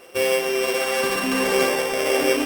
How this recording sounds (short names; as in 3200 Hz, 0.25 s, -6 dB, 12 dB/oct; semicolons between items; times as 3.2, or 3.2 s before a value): a buzz of ramps at a fixed pitch in blocks of 16 samples; tremolo triangle 1.4 Hz, depth 35%; Opus